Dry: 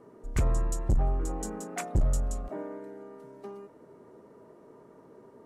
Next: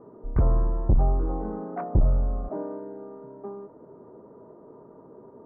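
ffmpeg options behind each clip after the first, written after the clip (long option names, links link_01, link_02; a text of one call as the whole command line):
ffmpeg -i in.wav -af "lowpass=frequency=1200:width=0.5412,lowpass=frequency=1200:width=1.3066,volume=5dB" out.wav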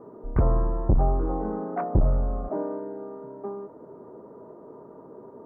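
ffmpeg -i in.wav -af "lowshelf=frequency=160:gain=-5.5,volume=4dB" out.wav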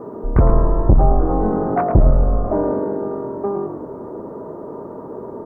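ffmpeg -i in.wav -filter_complex "[0:a]asplit=6[link_01][link_02][link_03][link_04][link_05][link_06];[link_02]adelay=109,afreqshift=-46,volume=-8dB[link_07];[link_03]adelay=218,afreqshift=-92,volume=-15.7dB[link_08];[link_04]adelay=327,afreqshift=-138,volume=-23.5dB[link_09];[link_05]adelay=436,afreqshift=-184,volume=-31.2dB[link_10];[link_06]adelay=545,afreqshift=-230,volume=-39dB[link_11];[link_01][link_07][link_08][link_09][link_10][link_11]amix=inputs=6:normalize=0,asplit=2[link_12][link_13];[link_13]acompressor=threshold=-31dB:ratio=6,volume=2dB[link_14];[link_12][link_14]amix=inputs=2:normalize=0,volume=6dB" out.wav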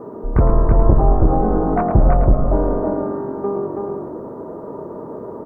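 ffmpeg -i in.wav -af "aecho=1:1:327:0.708,volume=-1dB" out.wav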